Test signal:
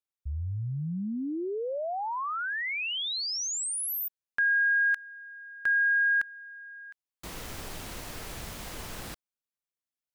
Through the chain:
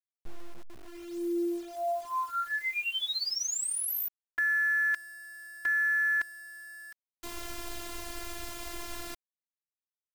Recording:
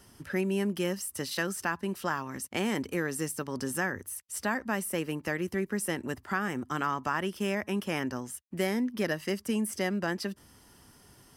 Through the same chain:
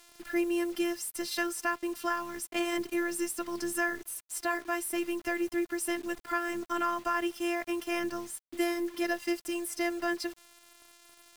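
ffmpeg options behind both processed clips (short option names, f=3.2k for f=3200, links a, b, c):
-af "afftfilt=real='hypot(re,im)*cos(PI*b)':imag='0':win_size=512:overlap=0.75,acrusher=bits=8:mix=0:aa=0.000001,volume=3.5dB"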